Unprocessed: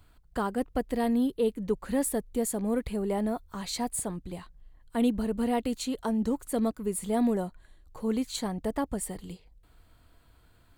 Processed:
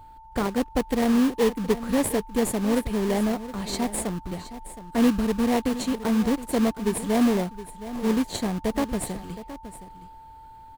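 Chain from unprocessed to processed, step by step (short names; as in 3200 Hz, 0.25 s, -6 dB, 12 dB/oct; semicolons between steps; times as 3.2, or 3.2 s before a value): in parallel at -3 dB: sample-rate reducer 1400 Hz, jitter 20%; on the sum: whine 890 Hz -47 dBFS; echo 0.718 s -14 dB; gain +1.5 dB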